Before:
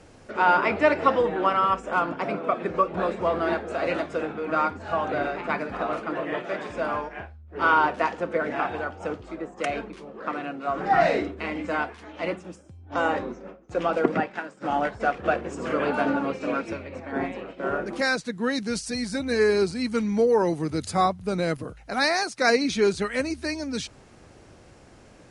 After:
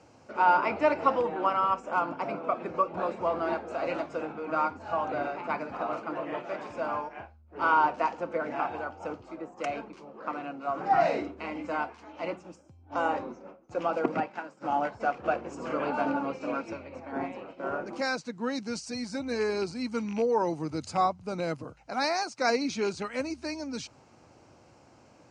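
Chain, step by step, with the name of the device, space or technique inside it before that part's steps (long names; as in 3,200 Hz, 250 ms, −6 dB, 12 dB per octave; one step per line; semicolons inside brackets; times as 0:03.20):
car door speaker with a rattle (loose part that buzzes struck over −25 dBFS, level −25 dBFS; loudspeaker in its box 110–7,300 Hz, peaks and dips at 190 Hz −5 dB, 410 Hz −5 dB, 890 Hz +4 dB, 1,800 Hz −8 dB, 3,500 Hz −8 dB)
level −4 dB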